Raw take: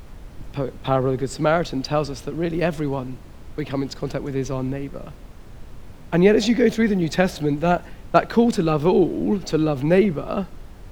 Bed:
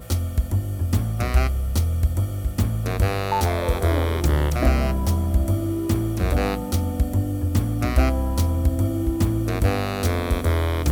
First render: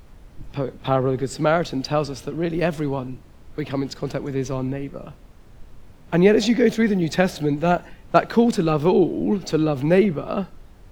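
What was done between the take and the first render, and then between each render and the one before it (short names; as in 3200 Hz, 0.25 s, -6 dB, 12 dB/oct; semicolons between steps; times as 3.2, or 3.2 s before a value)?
noise print and reduce 6 dB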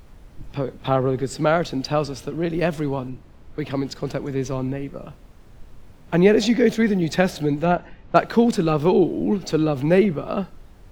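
3.09–3.61 high shelf 4600 Hz -6.5 dB; 7.65–8.16 air absorption 150 m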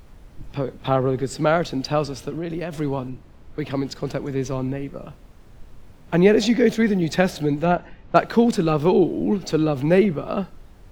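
2.32–2.76 compressor 10:1, threshold -23 dBFS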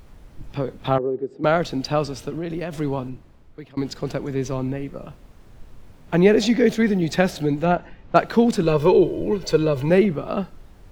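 0.98–1.44 band-pass 380 Hz, Q 2.3; 3.07–3.77 fade out, to -24 dB; 8.63–9.9 comb 2 ms, depth 76%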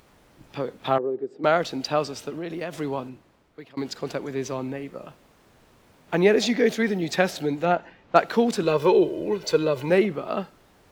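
HPF 390 Hz 6 dB/oct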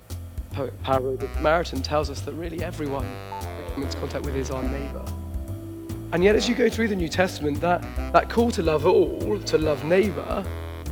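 add bed -11.5 dB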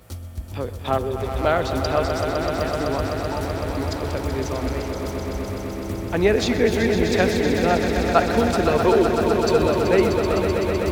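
swelling echo 0.127 s, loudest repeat 5, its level -9 dB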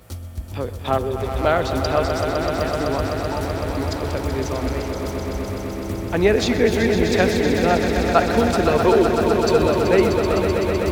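gain +1.5 dB; limiter -3 dBFS, peak gain reduction 1 dB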